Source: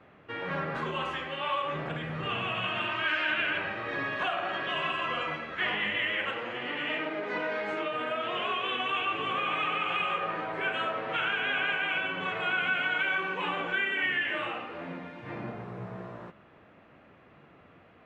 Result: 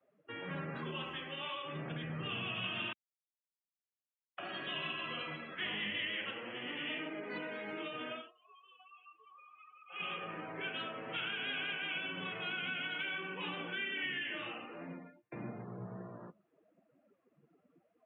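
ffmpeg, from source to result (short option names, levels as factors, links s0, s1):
-filter_complex "[0:a]asplit=6[s0][s1][s2][s3][s4][s5];[s0]atrim=end=2.93,asetpts=PTS-STARTPTS,afade=t=out:st=2.926:d=0.004:c=hsin[s6];[s1]atrim=start=2.93:end=4.38,asetpts=PTS-STARTPTS,volume=0[s7];[s2]atrim=start=4.38:end=8.35,asetpts=PTS-STARTPTS,afade=t=in:d=0.004:c=hsin,afade=t=out:st=3.77:d=0.2:c=qua:silence=0.0630957[s8];[s3]atrim=start=8.35:end=9.85,asetpts=PTS-STARTPTS,volume=0.0631[s9];[s4]atrim=start=9.85:end=15.32,asetpts=PTS-STARTPTS,afade=t=in:d=0.2:c=qua:silence=0.0630957,afade=t=out:st=4.97:d=0.5[s10];[s5]atrim=start=15.32,asetpts=PTS-STARTPTS,afade=t=in:d=0.004:c=hsin[s11];[s6][s7][s8][s9][s10][s11]concat=n=6:v=0:a=1,highpass=f=190:p=1,afftdn=nr=26:nf=-46,acrossover=split=310|3000[s12][s13][s14];[s13]acompressor=threshold=0.00158:ratio=2[s15];[s12][s15][s14]amix=inputs=3:normalize=0"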